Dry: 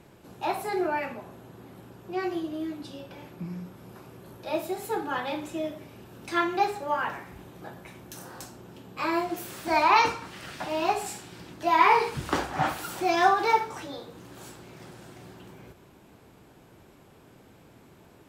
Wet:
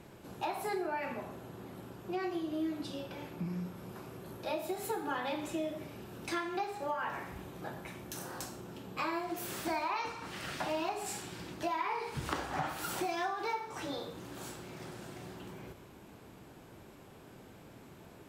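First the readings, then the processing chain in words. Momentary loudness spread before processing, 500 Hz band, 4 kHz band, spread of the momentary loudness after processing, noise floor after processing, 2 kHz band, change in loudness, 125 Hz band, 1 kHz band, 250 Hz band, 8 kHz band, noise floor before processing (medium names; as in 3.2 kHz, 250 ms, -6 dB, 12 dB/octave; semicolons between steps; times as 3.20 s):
24 LU, -7.5 dB, -7.0 dB, 19 LU, -55 dBFS, -10.0 dB, -11.5 dB, -3.5 dB, -11.5 dB, -5.5 dB, -3.0 dB, -55 dBFS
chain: compression 16:1, threshold -32 dBFS, peak gain reduction 18.5 dB; Schroeder reverb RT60 0.66 s, combs from 28 ms, DRR 10.5 dB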